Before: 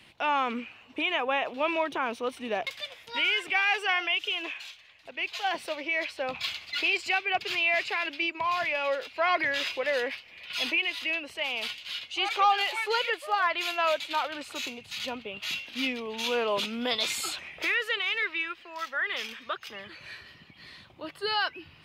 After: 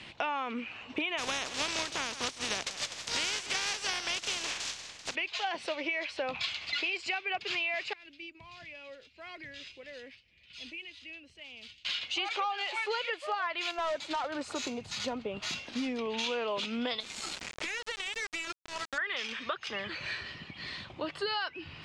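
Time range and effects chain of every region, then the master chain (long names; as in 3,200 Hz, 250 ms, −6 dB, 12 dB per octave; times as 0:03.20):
0:01.17–0:05.14: compressing power law on the bin magnitudes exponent 0.31 + parametric band 6,100 Hz +6 dB 1.4 octaves + single-tap delay 159 ms −16.5 dB
0:07.93–0:11.85: one scale factor per block 7 bits + guitar amp tone stack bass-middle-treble 10-0-1
0:13.71–0:15.99: parametric band 2,800 Hz −12.5 dB 1.3 octaves + gain into a clipping stage and back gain 29 dB
0:17.00–0:18.98: parametric band 210 Hz +11.5 dB 0.71 octaves + downward compressor 4 to 1, threshold −38 dBFS + centre clipping without the shift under −38 dBFS
whole clip: low-pass filter 7,700 Hz 24 dB per octave; downward compressor 6 to 1, threshold −39 dBFS; level +7.5 dB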